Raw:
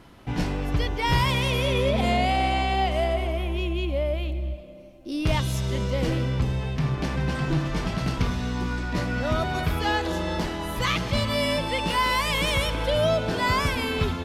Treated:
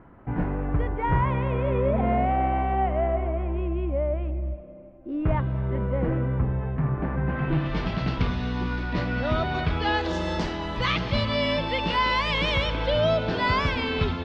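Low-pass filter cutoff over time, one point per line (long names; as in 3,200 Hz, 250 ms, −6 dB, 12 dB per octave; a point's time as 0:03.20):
low-pass filter 24 dB per octave
0:07.23 1,700 Hz
0:07.77 4,300 Hz
0:09.91 4,300 Hz
0:10.27 7,800 Hz
0:10.70 4,600 Hz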